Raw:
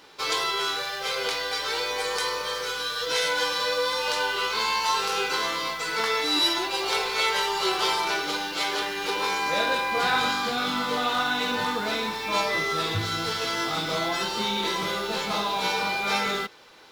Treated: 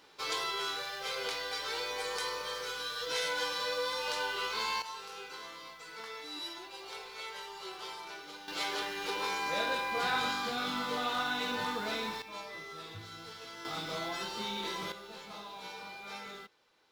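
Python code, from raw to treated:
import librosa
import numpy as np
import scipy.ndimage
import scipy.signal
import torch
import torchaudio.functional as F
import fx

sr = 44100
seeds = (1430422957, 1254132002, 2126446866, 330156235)

y = fx.gain(x, sr, db=fx.steps((0.0, -8.5), (4.82, -19.0), (8.48, -8.0), (12.22, -19.0), (13.65, -10.5), (14.92, -19.0)))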